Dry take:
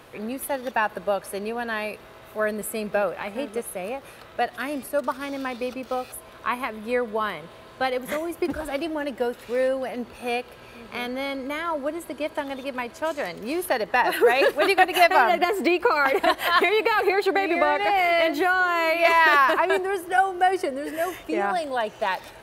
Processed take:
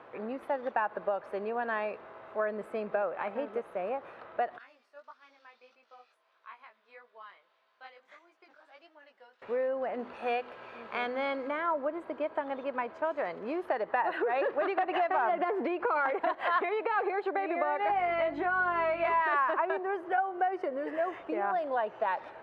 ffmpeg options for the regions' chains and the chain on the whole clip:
ffmpeg -i in.wav -filter_complex "[0:a]asettb=1/sr,asplit=3[link_01][link_02][link_03];[link_01]atrim=end=4.584[link_04];[link_02]atrim=start=4.58:end=9.42,asetpts=PTS-STARTPTS,afade=type=in:duration=0.004:curve=qsin,afade=type=out:start_time=4.836:duration=0.004:curve=qsin,bandpass=frequency=5500:width_type=q:width=1.8,flanger=delay=16.5:depth=5.4:speed=1.6[link_05];[link_03]atrim=start=9.416[link_06];[link_04][link_05]acrossfade=duration=0.004:curve1=hsin:curve2=qsin[link_07];[link_07][link_06]acrossfade=duration=0.004:curve1=qsin:curve2=hsin,asettb=1/sr,asplit=3[link_08][link_09][link_10];[link_08]atrim=end=9.994[link_11];[link_09]atrim=start=9.99:end=11.51,asetpts=PTS-STARTPTS,afade=type=in:duration=0.004:curve=qsin,afade=type=out:start_time=1.516:duration=0.004:curve=qsin,highshelf=frequency=2000:gain=9,bandreject=frequency=50:width_type=h:width=6,bandreject=frequency=100:width_type=h:width=6,bandreject=frequency=150:width_type=h:width=6,bandreject=frequency=200:width_type=h:width=6,bandreject=frequency=250:width_type=h:width=6,bandreject=frequency=300:width_type=h:width=6,bandreject=frequency=350:width_type=h:width=6,bandreject=frequency=400:width_type=h:width=6,bandreject=frequency=450:width_type=h:width=6[link_12];[link_10]atrim=start=11.506[link_13];[link_11][link_12]acrossfade=duration=0.004:curve1=hsin:curve2=qsin[link_14];[link_14][link_13]acrossfade=duration=0.004:curve1=qsin:curve2=hsin,asettb=1/sr,asplit=3[link_15][link_16][link_17];[link_15]atrim=end=14.234[link_18];[link_16]atrim=start=14.23:end=16.11,asetpts=PTS-STARTPTS,afade=type=in:duration=0.004:curve=qsin,afade=type=out:start_time=1.876:duration=0.004:curve=qsin,equalizer=frequency=8400:width=1.2:gain=-13,acompressor=threshold=-21dB:ratio=2.5:attack=3.2:release=140:knee=1:detection=peak,aeval=exprs='0.316*sin(PI/2*1.58*val(0)/0.316)':channel_layout=same[link_19];[link_17]atrim=start=16.106[link_20];[link_18][link_19]acrossfade=duration=0.004:curve1=hsin:curve2=qsin[link_21];[link_21][link_20]acrossfade=duration=0.004:curve1=qsin:curve2=hsin,asettb=1/sr,asplit=3[link_22][link_23][link_24];[link_22]atrim=end=17.884[link_25];[link_23]atrim=start=17.88:end=19.22,asetpts=PTS-STARTPTS,afade=type=in:duration=0.004:curve=qsin,afade=type=out:start_time=1.336:duration=0.004:curve=qsin,bandreject=frequency=4700:width=26,asplit=2[link_26][link_27];[link_27]adelay=17,volume=-7dB[link_28];[link_26][link_28]amix=inputs=2:normalize=0,atrim=end_sample=59094,aeval=exprs='val(0)+0.0251*(sin(2*PI*50*n/s)+sin(2*PI*2*50*n/s)/2+sin(2*PI*3*50*n/s)/3+sin(2*PI*4*50*n/s)/4+sin(2*PI*5*50*n/s)/5)':channel_layout=same[link_29];[link_24]atrim=start=19.216[link_30];[link_25][link_29]acrossfade=duration=0.004:curve1=hsin:curve2=qsin[link_31];[link_31][link_30]acrossfade=duration=0.004:curve1=qsin:curve2=hsin,lowpass=1200,acompressor=threshold=-26dB:ratio=6,highpass=frequency=820:poles=1,volume=3.5dB" out.wav

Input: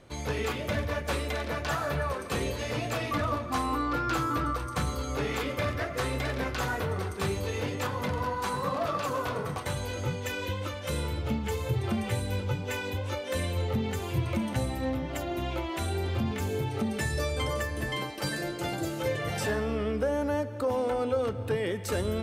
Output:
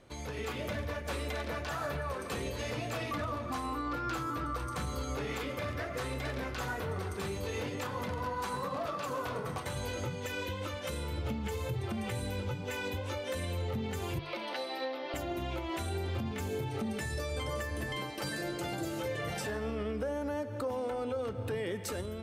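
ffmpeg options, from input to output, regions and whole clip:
ffmpeg -i in.wav -filter_complex "[0:a]asettb=1/sr,asplit=3[link_01][link_02][link_03];[link_01]atrim=end=14.194[link_04];[link_02]atrim=start=14.19:end=15.14,asetpts=PTS-STARTPTS,afade=type=in:duration=0.004:curve=qsin,afade=type=out:start_time=0.946:duration=0.004:curve=qsin,highpass=frequency=380:width=0.5412,highpass=frequency=380:width=1.3066,highshelf=frequency=5800:width_type=q:width=3:gain=-8.5[link_05];[link_03]atrim=start=15.136[link_06];[link_04][link_05]acrossfade=duration=0.004:curve1=hsin:curve2=qsin[link_07];[link_07][link_06]acrossfade=duration=0.004:curve1=qsin:curve2=hsin,bandreject=frequency=50:width_type=h:width=6,bandreject=frequency=100:width_type=h:width=6,bandreject=frequency=150:width_type=h:width=6,alimiter=level_in=4.5dB:limit=-24dB:level=0:latency=1:release=248,volume=-4.5dB,dynaudnorm=framelen=140:gausssize=5:maxgain=5.5dB,volume=-4dB" out.wav

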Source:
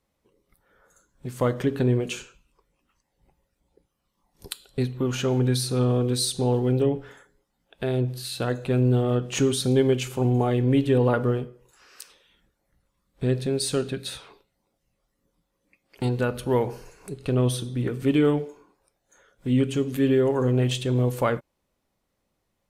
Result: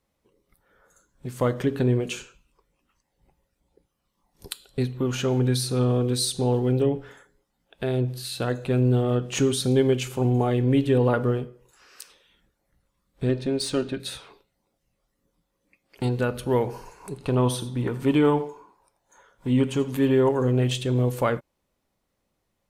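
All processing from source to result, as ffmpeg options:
ffmpeg -i in.wav -filter_complex "[0:a]asettb=1/sr,asplit=3[link_01][link_02][link_03];[link_01]atrim=end=13.294[link_04];[link_02]atrim=start=13.29:end=14,asetpts=PTS-STARTPTS,afade=type=in:duration=0.004:curve=qsin,afade=type=out:start_time=0.706:duration=0.004:curve=qsin,equalizer=frequency=930:width_type=o:width=0.33:gain=3,adynamicsmooth=sensitivity=3:basefreq=5700,aecho=1:1:3.3:0.45,atrim=end_sample=31311[link_05];[link_03]atrim=start=13.996[link_06];[link_04][link_05]acrossfade=duration=0.004:curve1=hsin:curve2=qsin[link_07];[link_07][link_06]acrossfade=duration=0.004:curve1=qsin:curve2=hsin,asettb=1/sr,asplit=3[link_08][link_09][link_10];[link_08]atrim=end=16.744[link_11];[link_09]atrim=start=16.74:end=20.29,asetpts=PTS-STARTPTS,afade=type=in:duration=0.004:curve=qsin,afade=type=out:start_time=3.546:duration=0.004:curve=qsin,equalizer=frequency=940:width_type=o:width=0.45:gain=13.5,aecho=1:1:84:0.168,atrim=end_sample=156555[link_12];[link_10]atrim=start=20.286[link_13];[link_11][link_12]acrossfade=duration=0.004:curve1=hsin:curve2=qsin[link_14];[link_14][link_13]acrossfade=duration=0.004:curve1=qsin:curve2=hsin" out.wav

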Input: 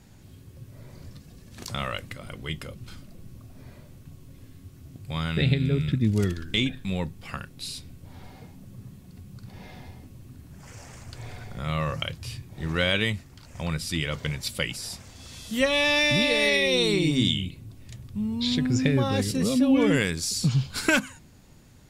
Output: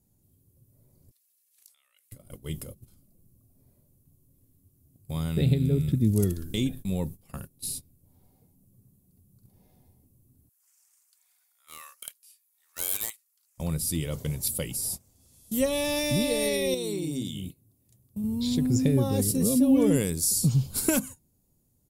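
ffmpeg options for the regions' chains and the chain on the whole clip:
ffmpeg -i in.wav -filter_complex "[0:a]asettb=1/sr,asplit=3[link_01][link_02][link_03];[link_01]atrim=end=1.114[link_04];[link_02]atrim=start=1.11:end=2.12,asetpts=PTS-STARTPTS,afade=type=in:duration=0.004:curve=qsin,afade=type=out:start_time=1.006:duration=0.004:curve=qsin,acompressor=threshold=-35dB:ratio=8:attack=3.2:release=140:knee=1:detection=peak,highpass=frequency=2100:width_type=q:width=1.6[link_05];[link_03]atrim=start=2.116[link_06];[link_04][link_05]acrossfade=duration=0.004:curve1=hsin:curve2=qsin[link_07];[link_07][link_06]acrossfade=duration=0.004:curve1=qsin:curve2=hsin,asettb=1/sr,asplit=3[link_08][link_09][link_10];[link_08]atrim=end=10.494[link_11];[link_09]atrim=start=10.49:end=13.58,asetpts=PTS-STARTPTS,afade=type=in:duration=0.004:curve=qsin,afade=type=out:start_time=3.086:duration=0.004:curve=qsin,highpass=frequency=1300:width=0.5412,highpass=frequency=1300:width=1.3066,aeval=exprs='0.0562*(abs(mod(val(0)/0.0562+3,4)-2)-1)':channel_layout=same[link_12];[link_10]atrim=start=13.576[link_13];[link_11][link_12]acrossfade=duration=0.004:curve1=hsin:curve2=qsin[link_14];[link_14][link_13]acrossfade=duration=0.004:curve1=qsin:curve2=hsin,asettb=1/sr,asplit=3[link_15][link_16][link_17];[link_15]atrim=end=16.744[link_18];[link_16]atrim=start=16.74:end=18.24,asetpts=PTS-STARTPTS,afade=type=in:duration=0.004:curve=qsin,afade=type=out:start_time=1.496:duration=0.004:curve=qsin,acompressor=threshold=-26dB:ratio=4:attack=3.2:release=140:knee=1:detection=peak,highpass=frequency=150:poles=1[link_19];[link_17]atrim=start=18.236[link_20];[link_18][link_19]acrossfade=duration=0.004:curve1=hsin:curve2=qsin[link_21];[link_21][link_20]acrossfade=duration=0.004:curve1=qsin:curve2=hsin,agate=range=-17dB:threshold=-37dB:ratio=16:detection=peak,firequalizer=gain_entry='entry(410,0);entry(1600,-15);entry(11000,14)':delay=0.05:min_phase=1" out.wav

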